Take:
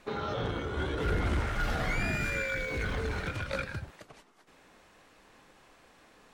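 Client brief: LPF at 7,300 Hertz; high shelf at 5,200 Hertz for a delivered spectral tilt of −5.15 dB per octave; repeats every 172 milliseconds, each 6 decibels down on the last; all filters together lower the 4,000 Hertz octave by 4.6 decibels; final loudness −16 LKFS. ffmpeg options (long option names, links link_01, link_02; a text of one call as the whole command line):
ffmpeg -i in.wav -af "lowpass=7300,equalizer=frequency=4000:width_type=o:gain=-4,highshelf=frequency=5200:gain=-4.5,aecho=1:1:172|344|516|688|860|1032:0.501|0.251|0.125|0.0626|0.0313|0.0157,volume=16dB" out.wav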